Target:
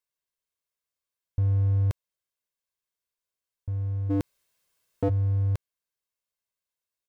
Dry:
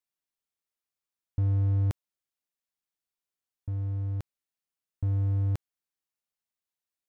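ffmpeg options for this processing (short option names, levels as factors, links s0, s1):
-filter_complex "[0:a]aecho=1:1:1.9:0.46,asplit=3[s0][s1][s2];[s0]afade=t=out:st=4.09:d=0.02[s3];[s1]aeval=exprs='0.106*sin(PI/2*3.98*val(0)/0.106)':c=same,afade=t=in:st=4.09:d=0.02,afade=t=out:st=5.08:d=0.02[s4];[s2]afade=t=in:st=5.08:d=0.02[s5];[s3][s4][s5]amix=inputs=3:normalize=0"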